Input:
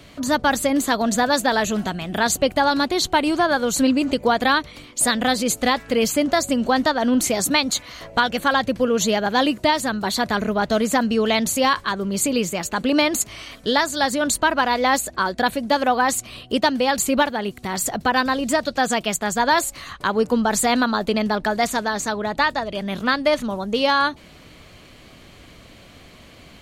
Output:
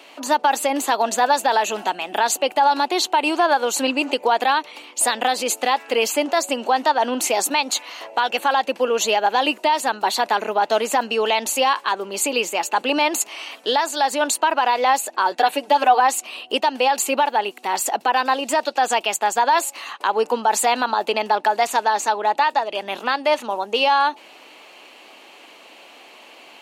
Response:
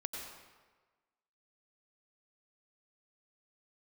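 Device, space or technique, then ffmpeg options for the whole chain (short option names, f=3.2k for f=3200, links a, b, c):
laptop speaker: -filter_complex "[0:a]highpass=f=320:w=0.5412,highpass=f=320:w=1.3066,equalizer=f=860:t=o:w=0.42:g=11.5,equalizer=f=2.7k:t=o:w=0.27:g=10,alimiter=limit=-8dB:level=0:latency=1:release=72,asettb=1/sr,asplit=3[a][b][c];[a]atrim=end=15.314[d];[b]atrim=start=15.31:end=16,asetpts=PTS-STARTPTS,afade=t=in:d=0.004:c=qsin,afade=t=out:st=0.686:d=0.004:c=qsin,aecho=1:1:6.7:0.8,atrim=end_sample=30429[e];[c]atrim=start=15.996[f];[d][e]acrossfade=d=0.004:c1=hsin:c2=qsin[g];[g][f]acrossfade=d=0.004:c1=qsin:c2=hsin"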